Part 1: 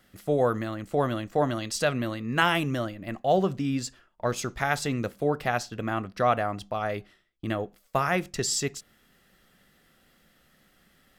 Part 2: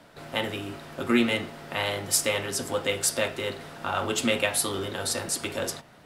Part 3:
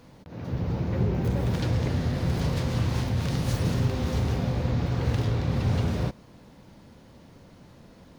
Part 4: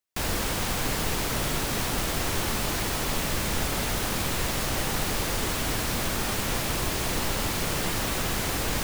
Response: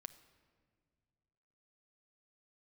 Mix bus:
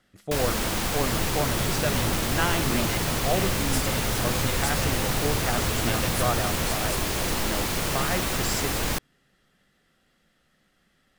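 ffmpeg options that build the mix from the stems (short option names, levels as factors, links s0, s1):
-filter_complex "[0:a]lowpass=9600,volume=0.531,asplit=2[s0][s1];[s1]volume=0.316[s2];[1:a]adelay=1600,volume=0.335[s3];[2:a]adelay=600,volume=0.447[s4];[3:a]adelay=150,volume=1.12[s5];[4:a]atrim=start_sample=2205[s6];[s2][s6]afir=irnorm=-1:irlink=0[s7];[s0][s3][s4][s5][s7]amix=inputs=5:normalize=0"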